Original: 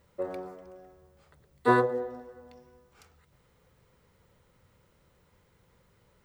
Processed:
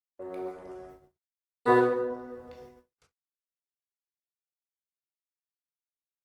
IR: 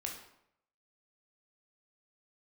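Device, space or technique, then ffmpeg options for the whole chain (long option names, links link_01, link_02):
speakerphone in a meeting room: -filter_complex "[0:a]asettb=1/sr,asplit=3[link_01][link_02][link_03];[link_01]atrim=end=2.044[link_04];[link_02]atrim=start=2.04:end=2.55,asetpts=PTS-STARTPTS,afade=type=in:duration=0.004:curve=qsin,afade=type=out:start_time=0.506:duration=0.004:curve=qsin,highshelf=frequency=5000:gain=-5.5[link_05];[link_03]atrim=start=2.546[link_06];[link_04][link_05]acrossfade=duration=0.004:curve1=hsin:curve2=qsin[link_07];[link_07][link_06]acrossfade=duration=0.004:curve1=qsin:curve2=hsin[link_08];[1:a]atrim=start_sample=2205[link_09];[link_08][link_09]afir=irnorm=-1:irlink=0,asplit=2[link_10][link_11];[link_11]adelay=140,highpass=300,lowpass=3400,asoftclip=type=hard:threshold=-18dB,volume=-17dB[link_12];[link_10][link_12]amix=inputs=2:normalize=0,dynaudnorm=framelen=100:gausssize=9:maxgain=15dB,agate=range=-52dB:threshold=-40dB:ratio=16:detection=peak,volume=-8.5dB" -ar 48000 -c:a libopus -b:a 24k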